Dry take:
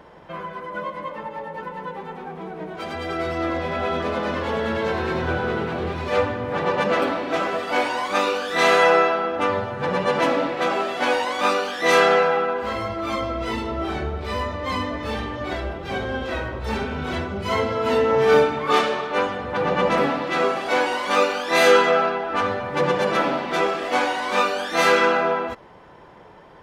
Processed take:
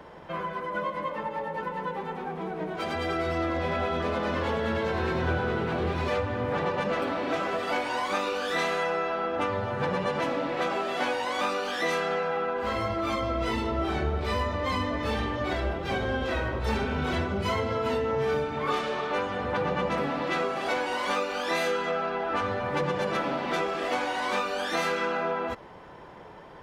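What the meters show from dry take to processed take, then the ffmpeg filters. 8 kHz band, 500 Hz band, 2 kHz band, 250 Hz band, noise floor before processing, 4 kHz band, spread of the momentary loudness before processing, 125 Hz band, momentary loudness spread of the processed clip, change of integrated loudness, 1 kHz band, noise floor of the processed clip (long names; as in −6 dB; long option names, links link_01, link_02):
−8.0 dB, −7.5 dB, −7.0 dB, −4.5 dB, −45 dBFS, −7.0 dB, 14 LU, −1.5 dB, 5 LU, −7.0 dB, −7.0 dB, −45 dBFS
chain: -filter_complex "[0:a]acrossover=split=140[link_01][link_02];[link_02]acompressor=threshold=-25dB:ratio=10[link_03];[link_01][link_03]amix=inputs=2:normalize=0"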